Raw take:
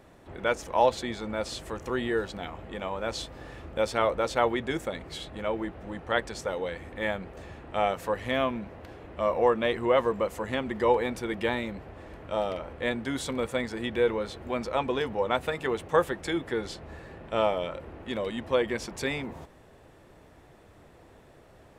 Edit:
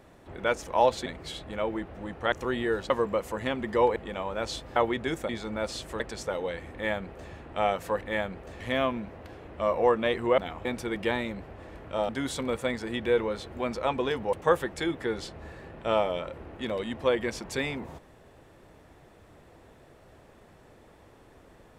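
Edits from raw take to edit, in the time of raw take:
1.06–1.77 swap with 4.92–6.18
2.35–2.62 swap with 9.97–11.03
3.42–4.39 cut
6.91–7.5 copy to 8.19
12.47–12.99 cut
15.23–15.8 cut

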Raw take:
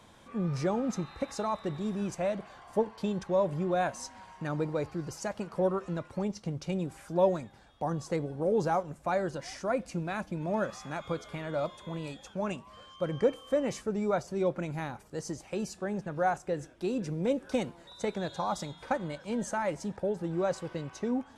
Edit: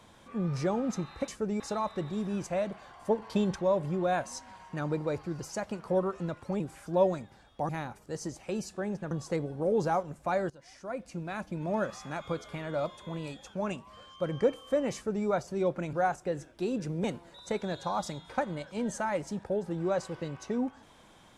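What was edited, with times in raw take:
2.9–3.29 gain +4 dB
6.28–6.82 cut
9.3–10.45 fade in, from -19 dB
13.74–14.06 copy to 1.28
14.73–16.15 move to 7.91
17.26–17.57 cut

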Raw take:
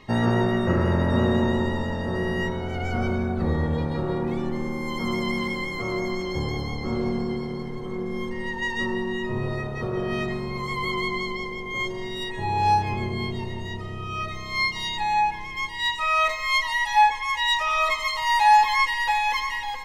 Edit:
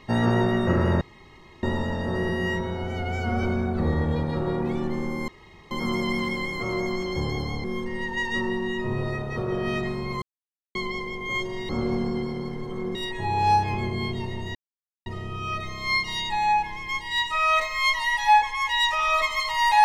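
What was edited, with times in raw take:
1.01–1.63 room tone
2.29–3.05 stretch 1.5×
4.9 insert room tone 0.43 s
6.83–8.09 move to 12.14
10.67–11.2 mute
13.74 insert silence 0.51 s

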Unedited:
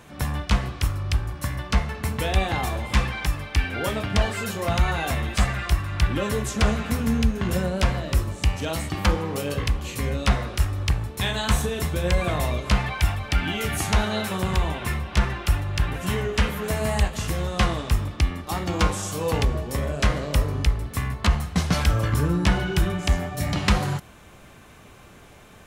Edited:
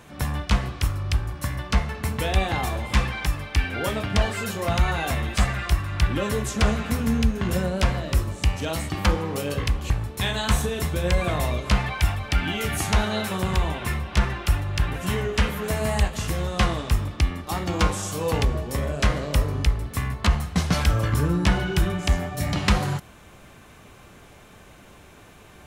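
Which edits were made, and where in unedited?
9.9–10.9 cut

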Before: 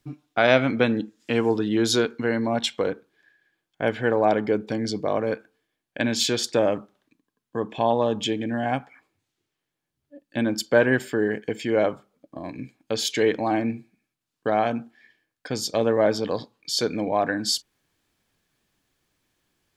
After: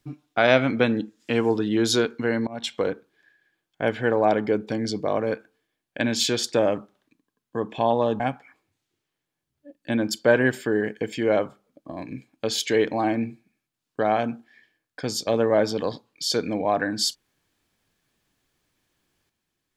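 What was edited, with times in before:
2.47–2.79 fade in, from -22 dB
8.2–8.67 cut

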